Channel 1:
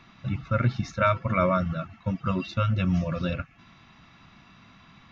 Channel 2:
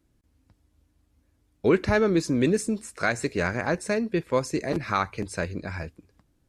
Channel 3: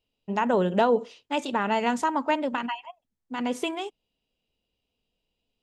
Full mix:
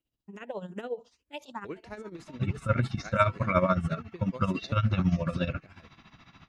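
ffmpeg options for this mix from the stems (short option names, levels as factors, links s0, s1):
-filter_complex "[0:a]adelay=2150,volume=1.26[s0];[1:a]volume=0.15,asplit=2[s1][s2];[2:a]highshelf=f=8500:g=10,asplit=2[s3][s4];[s4]afreqshift=2.3[s5];[s3][s5]amix=inputs=2:normalize=1,volume=0.355[s6];[s2]apad=whole_len=248224[s7];[s6][s7]sidechaincompress=threshold=0.002:ratio=4:attack=5.2:release=459[s8];[s0][s1][s8]amix=inputs=3:normalize=0,tremolo=f=14:d=0.76"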